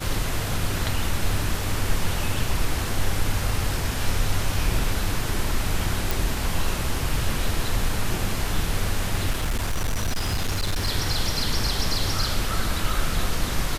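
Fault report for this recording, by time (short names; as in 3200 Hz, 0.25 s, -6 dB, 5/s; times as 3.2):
6.11 pop
9.3–10.88 clipped -20 dBFS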